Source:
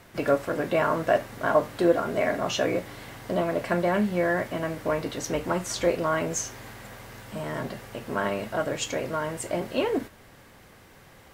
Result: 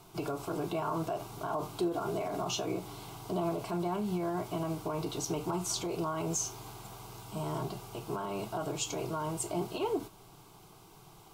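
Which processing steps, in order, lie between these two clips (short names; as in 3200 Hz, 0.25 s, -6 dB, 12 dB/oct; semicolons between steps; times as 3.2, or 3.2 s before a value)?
limiter -21 dBFS, peak gain reduction 12 dB; fixed phaser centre 360 Hz, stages 8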